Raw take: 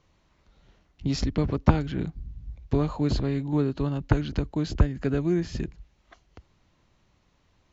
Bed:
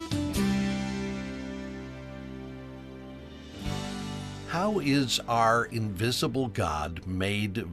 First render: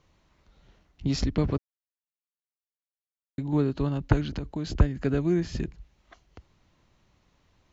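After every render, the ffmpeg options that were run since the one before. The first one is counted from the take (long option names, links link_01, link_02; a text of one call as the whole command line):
ffmpeg -i in.wav -filter_complex "[0:a]asettb=1/sr,asplit=3[link_01][link_02][link_03];[link_01]atrim=end=4.264[link_04];[link_02]atrim=start=4.26:end=4.73,asetpts=PTS-STARTPTS,afade=type=in:duration=0.004:curve=qsin,afade=type=out:start_time=0.466:duration=0.004:curve=qsin,acompressor=threshold=-28dB:ratio=3:attack=3.2:release=140:knee=1:detection=peak[link_05];[link_03]atrim=start=4.726[link_06];[link_04][link_05]acrossfade=duration=0.004:curve1=hsin:curve2=qsin[link_07];[link_07][link_06]acrossfade=duration=0.004:curve1=qsin:curve2=hsin,asplit=3[link_08][link_09][link_10];[link_08]atrim=end=1.58,asetpts=PTS-STARTPTS,afade=type=out:start_time=1.576:duration=0.004:curve=hsin[link_11];[link_09]atrim=start=1.58:end=3.38,asetpts=PTS-STARTPTS,volume=0[link_12];[link_10]atrim=start=3.38,asetpts=PTS-STARTPTS,afade=type=in:duration=0.004:curve=hsin[link_13];[link_11][link_12][link_13]concat=n=3:v=0:a=1" out.wav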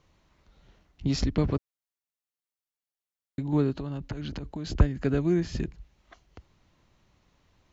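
ffmpeg -i in.wav -filter_complex "[0:a]asettb=1/sr,asplit=3[link_01][link_02][link_03];[link_01]atrim=end=3.794[link_04];[link_02]atrim=start=3.79:end=4.68,asetpts=PTS-STARTPTS,afade=type=in:duration=0.004:curve=qsin,afade=type=out:start_time=0.886:duration=0.004:curve=qsin,acompressor=threshold=-30dB:ratio=8:attack=3.2:release=140:knee=1:detection=peak[link_05];[link_03]atrim=start=4.676[link_06];[link_04][link_05]acrossfade=duration=0.004:curve1=hsin:curve2=qsin[link_07];[link_07][link_06]acrossfade=duration=0.004:curve1=qsin:curve2=hsin" out.wav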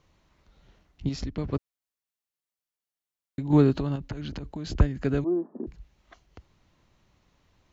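ffmpeg -i in.wav -filter_complex "[0:a]asettb=1/sr,asplit=3[link_01][link_02][link_03];[link_01]atrim=end=3.504[link_04];[link_02]atrim=start=3.5:end=3.96,asetpts=PTS-STARTPTS,afade=type=in:duration=0.004:curve=qsin,afade=type=out:start_time=0.456:duration=0.004:curve=qsin,acontrast=53[link_05];[link_03]atrim=start=3.956[link_06];[link_04][link_05]acrossfade=duration=0.004:curve1=hsin:curve2=qsin[link_07];[link_07][link_06]acrossfade=duration=0.004:curve1=qsin:curve2=hsin,asettb=1/sr,asplit=3[link_08][link_09][link_10];[link_08]atrim=end=5.244[link_11];[link_09]atrim=start=5.24:end=5.67,asetpts=PTS-STARTPTS,afade=type=in:duration=0.004:curve=qsin,afade=type=out:start_time=0.426:duration=0.004:curve=qsin,asuperpass=centerf=500:order=12:qfactor=0.55[link_12];[link_10]atrim=start=5.666[link_13];[link_11][link_12]acrossfade=duration=0.004:curve1=hsin:curve2=qsin[link_14];[link_14][link_13]acrossfade=duration=0.004:curve1=qsin:curve2=hsin,asplit=3[link_15][link_16][link_17];[link_15]atrim=end=1.092[link_18];[link_16]atrim=start=1.088:end=1.532,asetpts=PTS-STARTPTS,volume=-6.5dB[link_19];[link_17]atrim=start=1.528[link_20];[link_18][link_19]acrossfade=duration=0.004:curve1=hsin:curve2=hsin[link_21];[link_21][link_20]acrossfade=duration=0.004:curve1=hsin:curve2=hsin" out.wav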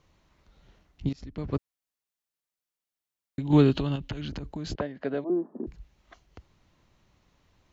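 ffmpeg -i in.wav -filter_complex "[0:a]asettb=1/sr,asplit=3[link_01][link_02][link_03];[link_01]atrim=end=3.404[link_04];[link_02]atrim=start=3.4:end=4.25,asetpts=PTS-STARTPTS,afade=type=in:duration=0.004:curve=qsin,afade=type=out:start_time=0.846:duration=0.004:curve=qsin,equalizer=frequency=3100:width_type=o:width=0.66:gain=11.5[link_05];[link_03]atrim=start=4.246[link_06];[link_04][link_05]acrossfade=duration=0.004:curve1=hsin:curve2=qsin[link_07];[link_07][link_06]acrossfade=duration=0.004:curve1=qsin:curve2=hsin,asettb=1/sr,asplit=3[link_08][link_09][link_10];[link_08]atrim=end=4.754[link_11];[link_09]atrim=start=4.75:end=5.3,asetpts=PTS-STARTPTS,afade=type=in:duration=0.004:curve=qsin,afade=type=out:start_time=0.546:duration=0.004:curve=qsin,highpass=320,equalizer=frequency=340:width_type=q:width=4:gain=-5,equalizer=frequency=610:width_type=q:width=4:gain=7,equalizer=frequency=1300:width_type=q:width=4:gain=-5,equalizer=frequency=2500:width_type=q:width=4:gain=-6,lowpass=frequency=3800:width=0.5412,lowpass=frequency=3800:width=1.3066[link_12];[link_10]atrim=start=5.296[link_13];[link_11][link_12]acrossfade=duration=0.004:curve1=hsin:curve2=qsin[link_14];[link_14][link_13]acrossfade=duration=0.004:curve1=qsin:curve2=hsin,asplit=2[link_15][link_16];[link_15]atrim=end=1.13,asetpts=PTS-STARTPTS,afade=type=out:start_time=1.126:duration=0.004:curve=hsin:silence=0.0668344[link_17];[link_16]atrim=start=1.13,asetpts=PTS-STARTPTS,afade=type=in:duration=0.43:silence=0.0668344[link_18];[link_17][link_18]concat=n=2:v=0:a=1" out.wav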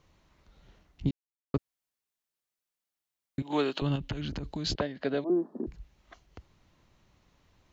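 ffmpeg -i in.wav -filter_complex "[0:a]asettb=1/sr,asplit=3[link_01][link_02][link_03];[link_01]atrim=end=3.424[link_04];[link_02]atrim=start=3.42:end=3.82,asetpts=PTS-STARTPTS,afade=type=in:duration=0.004:curve=qsin,afade=type=out:start_time=0.396:duration=0.004:curve=qsin,highpass=540[link_05];[link_03]atrim=start=3.816[link_06];[link_04][link_05]acrossfade=duration=0.004:curve1=hsin:curve2=qsin[link_07];[link_07][link_06]acrossfade=duration=0.004:curve1=qsin:curve2=hsin,asettb=1/sr,asplit=3[link_08][link_09][link_10];[link_08]atrim=end=4.434[link_11];[link_09]atrim=start=4.43:end=5.67,asetpts=PTS-STARTPTS,afade=type=in:duration=0.004:curve=qsin,afade=type=out:start_time=1.236:duration=0.004:curve=qsin,equalizer=frequency=4200:width=1:gain=10[link_12];[link_10]atrim=start=5.666[link_13];[link_11][link_12]acrossfade=duration=0.004:curve1=hsin:curve2=qsin[link_14];[link_14][link_13]acrossfade=duration=0.004:curve1=qsin:curve2=hsin,asplit=3[link_15][link_16][link_17];[link_15]atrim=end=1.11,asetpts=PTS-STARTPTS,afade=type=out:start_time=1.106:duration=0.004:curve=hsin[link_18];[link_16]atrim=start=1.11:end=1.54,asetpts=PTS-STARTPTS,volume=0[link_19];[link_17]atrim=start=1.54,asetpts=PTS-STARTPTS,afade=type=in:duration=0.004:curve=hsin[link_20];[link_18][link_19][link_20]concat=n=3:v=0:a=1" out.wav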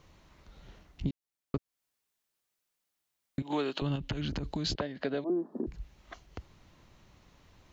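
ffmpeg -i in.wav -filter_complex "[0:a]asplit=2[link_01][link_02];[link_02]alimiter=limit=-23dB:level=0:latency=1:release=486,volume=-1dB[link_03];[link_01][link_03]amix=inputs=2:normalize=0,acompressor=threshold=-34dB:ratio=2" out.wav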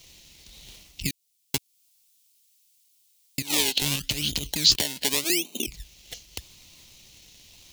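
ffmpeg -i in.wav -filter_complex "[0:a]acrossover=split=1900[link_01][link_02];[link_01]acrusher=samples=25:mix=1:aa=0.000001:lfo=1:lforange=25:lforate=0.86[link_03];[link_03][link_02]amix=inputs=2:normalize=0,aexciter=amount=5.1:drive=7.3:freq=2200" out.wav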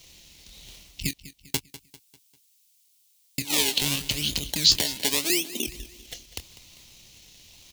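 ffmpeg -i in.wav -filter_complex "[0:a]asplit=2[link_01][link_02];[link_02]adelay=25,volume=-13.5dB[link_03];[link_01][link_03]amix=inputs=2:normalize=0,aecho=1:1:198|396|594|792:0.15|0.0688|0.0317|0.0146" out.wav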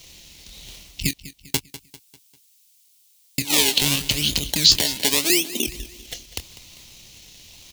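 ffmpeg -i in.wav -af "volume=5.5dB,alimiter=limit=-1dB:level=0:latency=1" out.wav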